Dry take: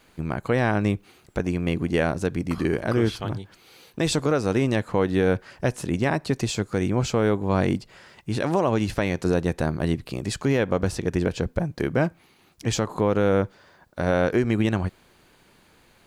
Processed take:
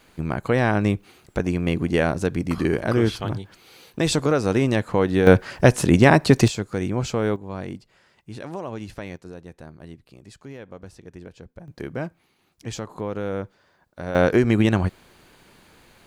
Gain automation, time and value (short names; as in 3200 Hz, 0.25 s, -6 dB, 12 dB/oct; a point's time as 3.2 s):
+2 dB
from 5.27 s +9.5 dB
from 6.48 s -1.5 dB
from 7.36 s -10.5 dB
from 9.17 s -17.5 dB
from 11.68 s -7.5 dB
from 14.15 s +4 dB